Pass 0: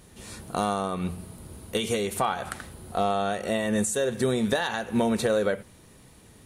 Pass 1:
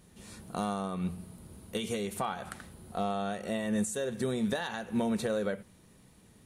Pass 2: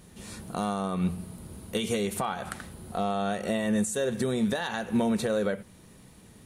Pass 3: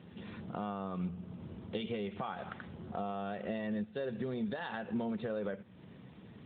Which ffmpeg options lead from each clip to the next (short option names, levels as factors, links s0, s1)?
-af "equalizer=f=190:t=o:w=0.6:g=6,volume=0.398"
-af "alimiter=limit=0.0631:level=0:latency=1:release=331,volume=2.11"
-af "acompressor=threshold=0.00708:ratio=2,volume=1.12" -ar 8000 -c:a libopencore_amrnb -b:a 12200